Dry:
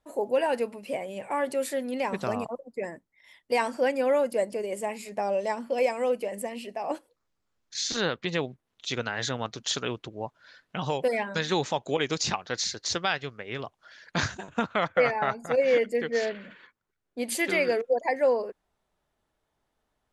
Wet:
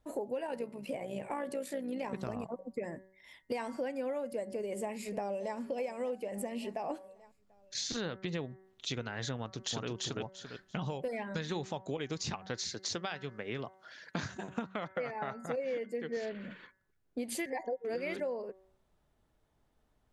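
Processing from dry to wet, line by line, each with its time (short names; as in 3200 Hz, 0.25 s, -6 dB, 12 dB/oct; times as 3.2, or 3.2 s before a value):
0.47–2.65 AM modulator 59 Hz, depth 35%
4.5–5.57 echo throw 0.58 s, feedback 45%, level -17.5 dB
9.38–9.88 echo throw 0.34 s, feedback 15%, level -0.5 dB
12.7–16.17 HPF 140 Hz
17.46–18.2 reverse
whole clip: low shelf 340 Hz +9.5 dB; de-hum 189.5 Hz, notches 11; compressor 6:1, threshold -33 dBFS; gain -1.5 dB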